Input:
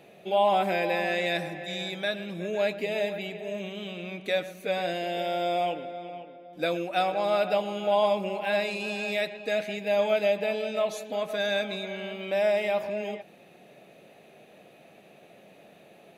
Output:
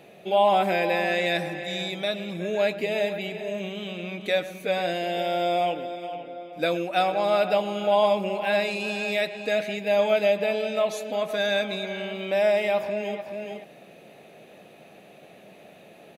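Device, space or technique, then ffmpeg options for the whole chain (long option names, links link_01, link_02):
ducked delay: -filter_complex "[0:a]asettb=1/sr,asplit=3[link_01][link_02][link_03];[link_01]atrim=end=1.864[link_04];[link_02]atrim=start=1.86:end=2.32,asetpts=PTS-STARTPTS,afade=type=in:duration=0.004:curve=qsin,afade=type=out:start_time=0.456:duration=0.004:curve=qsin,bandreject=frequency=1600:width=5.6[link_05];[link_03]atrim=start=2.316[link_06];[link_04][link_05]acrossfade=duration=0.004:curve1=hsin:curve2=qsin[link_07];[link_07][link_06]acrossfade=duration=0.004:curve1=qsin:curve2=hsin,asplit=3[link_08][link_09][link_10];[link_09]adelay=425,volume=-5.5dB[link_11];[link_10]apad=whole_len=731890[link_12];[link_11][link_12]sidechaincompress=threshold=-43dB:ratio=8:attack=7.8:release=139[link_13];[link_08][link_13]amix=inputs=2:normalize=0,volume=3dB"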